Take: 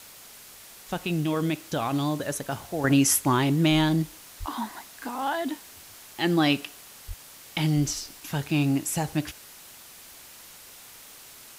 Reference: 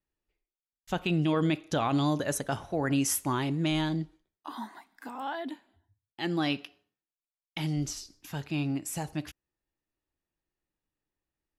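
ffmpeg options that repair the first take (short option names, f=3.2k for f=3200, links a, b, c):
-filter_complex "[0:a]asplit=3[a][b][c];[a]afade=t=out:st=4.39:d=0.02[d];[b]highpass=f=140:w=0.5412,highpass=f=140:w=1.3066,afade=t=in:st=4.39:d=0.02,afade=t=out:st=4.51:d=0.02[e];[c]afade=t=in:st=4.51:d=0.02[f];[d][e][f]amix=inputs=3:normalize=0,asplit=3[g][h][i];[g]afade=t=out:st=7.07:d=0.02[j];[h]highpass=f=140:w=0.5412,highpass=f=140:w=1.3066,afade=t=in:st=7.07:d=0.02,afade=t=out:st=7.19:d=0.02[k];[i]afade=t=in:st=7.19:d=0.02[l];[j][k][l]amix=inputs=3:normalize=0,afwtdn=0.005,asetnsamples=n=441:p=0,asendcmd='2.84 volume volume -7dB',volume=0dB"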